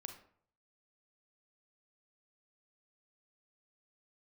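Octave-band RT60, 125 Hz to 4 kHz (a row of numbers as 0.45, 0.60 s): 0.75, 0.55, 0.60, 0.60, 0.45, 0.35 s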